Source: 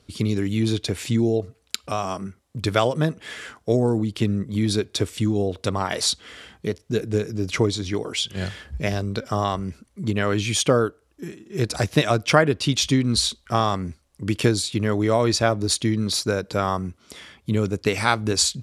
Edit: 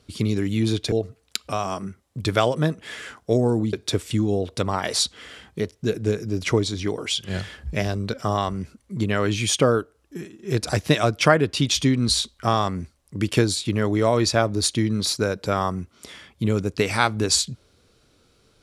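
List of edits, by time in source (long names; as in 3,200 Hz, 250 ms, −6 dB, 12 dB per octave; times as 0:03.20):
0:00.92–0:01.31: remove
0:04.12–0:04.80: remove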